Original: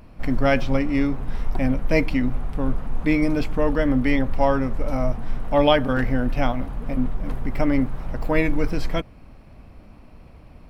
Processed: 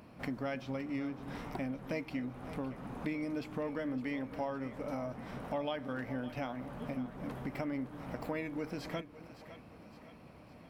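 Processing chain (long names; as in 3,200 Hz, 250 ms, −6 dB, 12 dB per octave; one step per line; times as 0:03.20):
high-pass filter 140 Hz 12 dB per octave
downward compressor 4 to 1, threshold −33 dBFS, peak gain reduction 17.5 dB
echo with a time of its own for lows and highs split 450 Hz, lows 270 ms, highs 561 ms, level −13.5 dB
level −4 dB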